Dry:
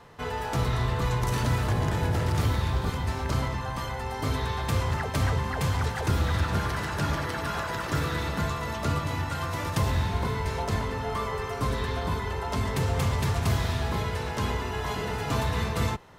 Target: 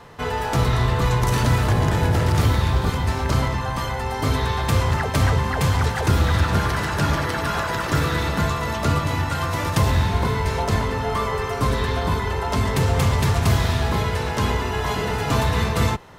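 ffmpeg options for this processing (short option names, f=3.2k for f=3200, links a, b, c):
-af "aeval=exprs='0.158*(cos(1*acos(clip(val(0)/0.158,-1,1)))-cos(1*PI/2))+0.00316*(cos(4*acos(clip(val(0)/0.158,-1,1)))-cos(4*PI/2))':c=same,volume=7dB"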